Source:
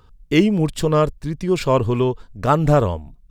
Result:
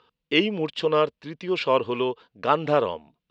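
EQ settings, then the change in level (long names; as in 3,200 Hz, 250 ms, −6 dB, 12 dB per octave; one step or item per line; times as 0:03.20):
loudspeaker in its box 260–4,000 Hz, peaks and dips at 480 Hz +5 dB, 990 Hz +3 dB, 2,800 Hz +5 dB
high-shelf EQ 2,200 Hz +10 dB
−6.5 dB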